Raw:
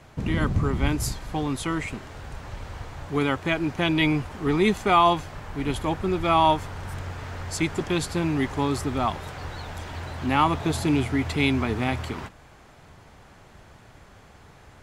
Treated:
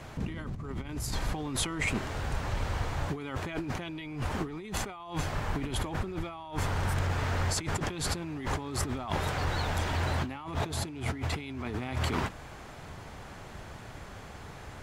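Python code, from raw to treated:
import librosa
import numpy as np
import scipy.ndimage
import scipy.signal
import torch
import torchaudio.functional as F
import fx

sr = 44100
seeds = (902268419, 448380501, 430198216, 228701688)

y = fx.over_compress(x, sr, threshold_db=-33.0, ratio=-1.0)
y = F.gain(torch.from_numpy(y), -1.0).numpy()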